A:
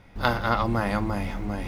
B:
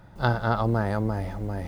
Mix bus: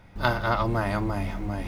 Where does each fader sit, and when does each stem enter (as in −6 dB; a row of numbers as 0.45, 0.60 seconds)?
−2.0, −6.0 decibels; 0.00, 0.00 seconds